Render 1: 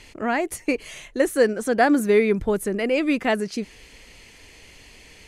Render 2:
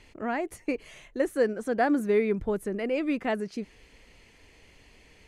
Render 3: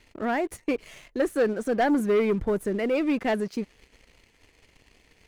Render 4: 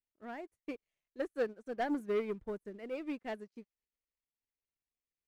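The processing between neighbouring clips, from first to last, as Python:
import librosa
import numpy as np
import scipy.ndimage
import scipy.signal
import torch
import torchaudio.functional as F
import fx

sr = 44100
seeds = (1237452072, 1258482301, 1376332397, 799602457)

y1 = fx.high_shelf(x, sr, hz=2800.0, db=-8.5)
y1 = F.gain(torch.from_numpy(y1), -6.0).numpy()
y2 = fx.leveller(y1, sr, passes=2)
y2 = F.gain(torch.from_numpy(y2), -3.0).numpy()
y3 = fx.upward_expand(y2, sr, threshold_db=-42.0, expansion=2.5)
y3 = F.gain(torch.from_numpy(y3), -9.0).numpy()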